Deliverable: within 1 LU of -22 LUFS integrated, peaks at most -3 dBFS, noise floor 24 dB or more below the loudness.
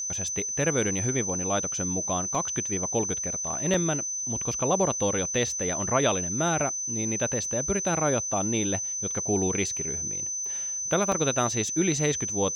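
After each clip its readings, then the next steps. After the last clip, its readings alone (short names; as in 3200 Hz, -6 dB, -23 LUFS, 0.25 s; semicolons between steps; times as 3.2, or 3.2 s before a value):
dropouts 3; longest dropout 2.3 ms; steady tone 6100 Hz; tone level -29 dBFS; loudness -26.0 LUFS; peak -11.5 dBFS; loudness target -22.0 LUFS
-> interpolate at 2.35/3.74/11.12, 2.3 ms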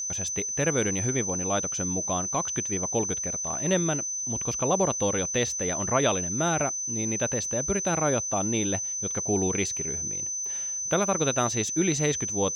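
dropouts 0; steady tone 6100 Hz; tone level -29 dBFS
-> notch 6100 Hz, Q 30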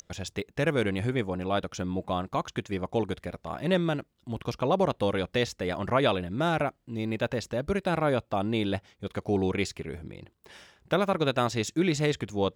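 steady tone none; loudness -29.0 LUFS; peak -12.5 dBFS; loudness target -22.0 LUFS
-> gain +7 dB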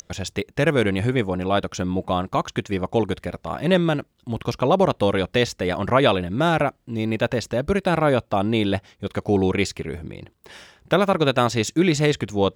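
loudness -22.0 LUFS; peak -5.5 dBFS; noise floor -62 dBFS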